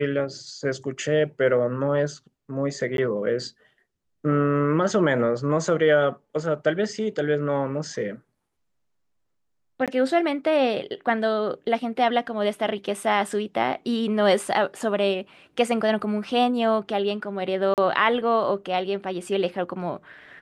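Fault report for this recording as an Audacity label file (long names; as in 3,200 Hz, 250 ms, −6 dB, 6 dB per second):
2.970000	2.980000	drop-out 12 ms
9.860000	9.880000	drop-out 17 ms
17.740000	17.780000	drop-out 38 ms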